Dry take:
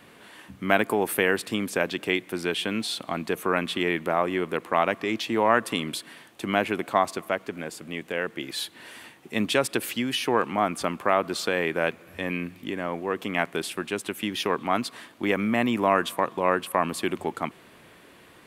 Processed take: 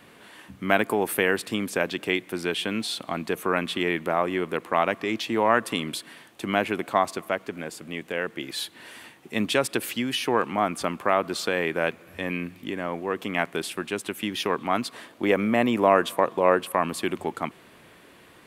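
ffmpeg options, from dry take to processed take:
-filter_complex "[0:a]asettb=1/sr,asplit=3[s0][s1][s2];[s0]atrim=end=14.944[s3];[s1]atrim=start=14.94:end=16.73,asetpts=PTS-STARTPTS,afade=t=in:d=0.004:c=qsin,afade=t=out:st=1.786:d=0.004:c=qsin,equalizer=f=520:t=o:w=1.1:g=5.5[s4];[s2]atrim=start=16.726[s5];[s3][s4]acrossfade=d=0.004:c1=hsin:c2=qsin[s6];[s6][s5]acrossfade=d=0.004:c1=qsin:c2=hsin"

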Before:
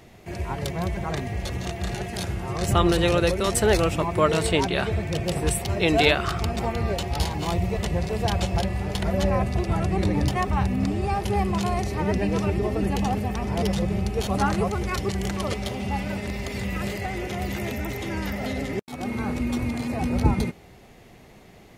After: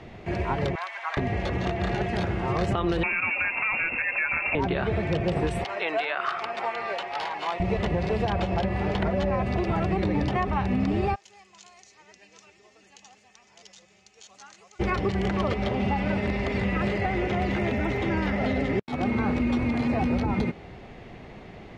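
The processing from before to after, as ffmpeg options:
-filter_complex "[0:a]asettb=1/sr,asplit=3[s0][s1][s2];[s0]atrim=end=0.754[s3];[s1]atrim=start=0.75:end=1.17,asetpts=PTS-STARTPTS,afade=t=in:d=0.004:c=qsin,afade=t=out:st=0.416:d=0.004:c=qsin,highpass=f=990:w=0.5412,highpass=f=990:w=1.3066[s4];[s2]atrim=start=1.166[s5];[s3][s4]acrossfade=d=0.004:c1=hsin:c2=qsin[s6];[s6][s5]acrossfade=d=0.004:c1=qsin:c2=hsin,asettb=1/sr,asplit=3[s7][s8][s9];[s7]atrim=end=3.034[s10];[s8]atrim=start=3.03:end=4.55,asetpts=PTS-STARTPTS,afade=t=in:d=0.004:c=qsin,afade=t=out:st=1.516:d=0.004:c=qsin,lowpass=f=2400:t=q:w=0.5098,lowpass=f=2400:t=q:w=0.6013,lowpass=f=2400:t=q:w=0.9,lowpass=f=2400:t=q:w=2.563,afreqshift=-2800[s11];[s9]atrim=start=4.546[s12];[s10][s11]acrossfade=d=0.004:c1=hsin:c2=qsin[s13];[s13][s12]acrossfade=d=0.004:c1=qsin:c2=hsin,asettb=1/sr,asplit=3[s14][s15][s16];[s14]atrim=end=5.644[s17];[s15]atrim=start=5.64:end=7.6,asetpts=PTS-STARTPTS,afade=t=in:d=0.004:c=qsin,afade=t=out:st=1.956:d=0.004:c=qsin,highpass=890[s18];[s16]atrim=start=7.596[s19];[s17][s18]acrossfade=d=0.004:c1=hsin:c2=qsin[s20];[s20][s19]acrossfade=d=0.004:c1=qsin:c2=hsin,asplit=3[s21][s22][s23];[s21]afade=t=out:st=11.14:d=0.02[s24];[s22]bandpass=f=6800:t=q:w=4.9,afade=t=in:st=11.14:d=0.02,afade=t=out:st=14.79:d=0.02[s25];[s23]afade=t=in:st=14.79:d=0.02[s26];[s24][s25][s26]amix=inputs=3:normalize=0,lowpass=3200,alimiter=limit=0.141:level=0:latency=1:release=90,acrossover=split=180|2300[s27][s28][s29];[s27]acompressor=threshold=0.0158:ratio=4[s30];[s28]acompressor=threshold=0.0316:ratio=4[s31];[s29]acompressor=threshold=0.00398:ratio=4[s32];[s30][s31][s32]amix=inputs=3:normalize=0,volume=2"

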